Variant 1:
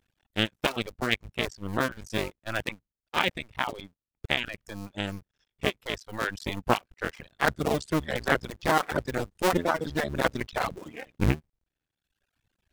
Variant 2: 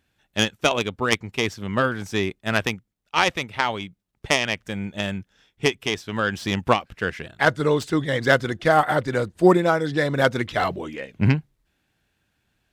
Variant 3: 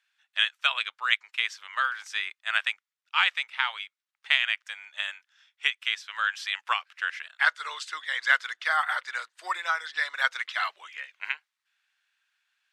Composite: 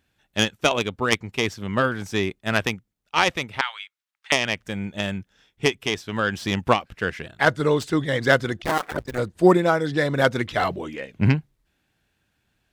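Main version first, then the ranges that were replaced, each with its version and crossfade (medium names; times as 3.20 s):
2
3.61–4.32 s: from 3
8.62–9.18 s: from 1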